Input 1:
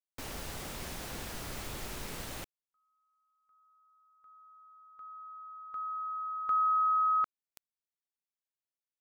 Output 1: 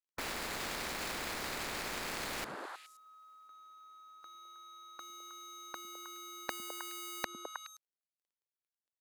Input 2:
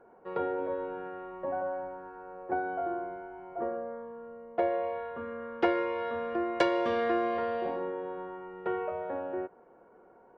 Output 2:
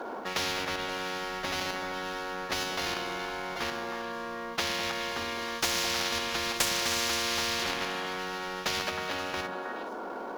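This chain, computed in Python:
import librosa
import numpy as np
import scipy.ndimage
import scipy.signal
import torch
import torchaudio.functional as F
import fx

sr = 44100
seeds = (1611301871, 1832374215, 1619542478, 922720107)

p1 = scipy.signal.medfilt(x, 15)
p2 = fx.peak_eq(p1, sr, hz=110.0, db=-8.5, octaves=0.41)
p3 = fx.level_steps(p2, sr, step_db=17)
p4 = p2 + (p3 * 10.0 ** (1.0 / 20.0))
p5 = fx.low_shelf_res(p4, sr, hz=220.0, db=-12.0, q=1.5)
p6 = fx.echo_stepped(p5, sr, ms=105, hz=180.0, octaves=1.4, feedback_pct=70, wet_db=-3.0)
y = fx.spectral_comp(p6, sr, ratio=10.0)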